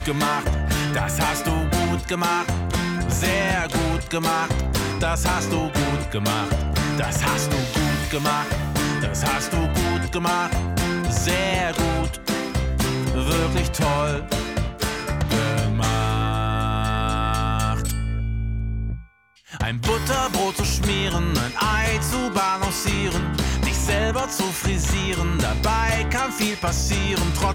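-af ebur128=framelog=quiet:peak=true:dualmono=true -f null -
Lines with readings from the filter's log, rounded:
Integrated loudness:
  I:         -19.5 LUFS
  Threshold: -29.6 LUFS
Loudness range:
  LRA:         1.8 LU
  Threshold: -39.6 LUFS
  LRA low:   -20.8 LUFS
  LRA high:  -19.0 LUFS
True peak:
  Peak:      -10.0 dBFS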